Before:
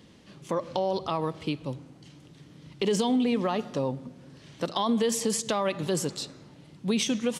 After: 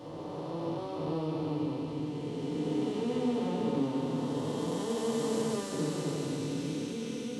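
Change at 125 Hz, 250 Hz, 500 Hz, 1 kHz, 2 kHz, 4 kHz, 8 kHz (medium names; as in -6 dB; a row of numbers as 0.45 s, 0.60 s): 0.0 dB, -2.5 dB, -4.0 dB, -7.5 dB, -8.0 dB, -9.0 dB, -10.5 dB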